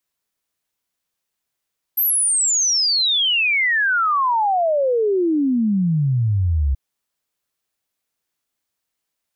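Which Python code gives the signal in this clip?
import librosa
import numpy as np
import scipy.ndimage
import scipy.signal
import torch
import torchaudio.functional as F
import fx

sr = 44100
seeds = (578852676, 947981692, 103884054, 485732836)

y = fx.ess(sr, length_s=4.78, from_hz=13000.0, to_hz=65.0, level_db=-15.0)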